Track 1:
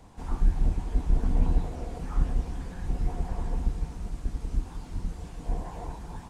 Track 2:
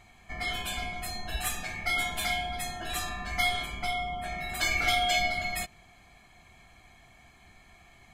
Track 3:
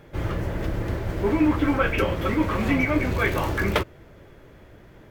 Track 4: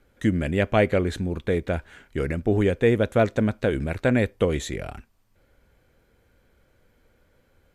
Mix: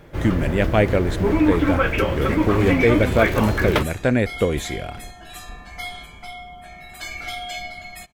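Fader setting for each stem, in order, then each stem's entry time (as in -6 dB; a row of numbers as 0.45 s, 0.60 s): -10.5 dB, -5.0 dB, +2.5 dB, +2.0 dB; 0.00 s, 2.40 s, 0.00 s, 0.00 s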